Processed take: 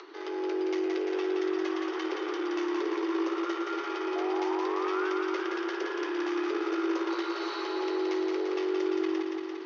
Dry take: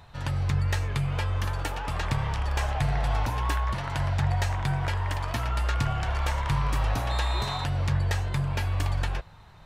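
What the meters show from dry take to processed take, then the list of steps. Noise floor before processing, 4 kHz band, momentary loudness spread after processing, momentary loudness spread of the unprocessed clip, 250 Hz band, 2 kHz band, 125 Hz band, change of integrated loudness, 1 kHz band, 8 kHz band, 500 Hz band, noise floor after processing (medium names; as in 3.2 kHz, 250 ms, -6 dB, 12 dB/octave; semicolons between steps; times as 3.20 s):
-49 dBFS, -4.5 dB, 3 LU, 3 LU, +8.5 dB, -3.0 dB, under -40 dB, -2.5 dB, -3.0 dB, -10.0 dB, +9.5 dB, -36 dBFS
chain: painted sound rise, 4.15–5.11 s, 410–1300 Hz -30 dBFS; in parallel at 0 dB: peak limiter -23.5 dBFS, peak gain reduction 9.5 dB; on the sum: one-sided clip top -27 dBFS; band-stop 3.8 kHz, Q 15; frequency shift +280 Hz; upward compressor, threshold -31 dBFS; steep low-pass 6.2 kHz 72 dB/octave; feedback comb 280 Hz, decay 0.53 s, harmonics odd, mix 70%; on a send: thinning echo 172 ms, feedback 75%, high-pass 160 Hz, level -4 dB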